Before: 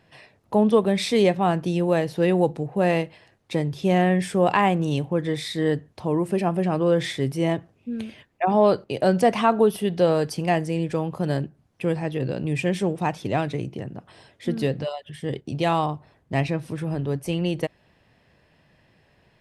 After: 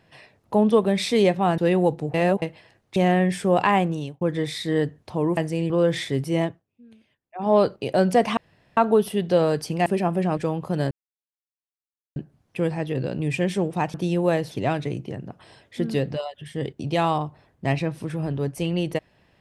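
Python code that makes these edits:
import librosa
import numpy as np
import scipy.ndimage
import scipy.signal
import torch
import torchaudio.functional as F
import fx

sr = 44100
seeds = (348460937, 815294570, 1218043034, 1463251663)

y = fx.edit(x, sr, fx.move(start_s=1.58, length_s=0.57, to_s=13.19),
    fx.reverse_span(start_s=2.71, length_s=0.28),
    fx.cut(start_s=3.53, length_s=0.33),
    fx.fade_out_span(start_s=4.72, length_s=0.39),
    fx.swap(start_s=6.27, length_s=0.51, other_s=10.54, other_length_s=0.33),
    fx.fade_down_up(start_s=7.51, length_s=1.11, db=-20.0, fade_s=0.19),
    fx.insert_room_tone(at_s=9.45, length_s=0.4),
    fx.insert_silence(at_s=11.41, length_s=1.25), tone=tone)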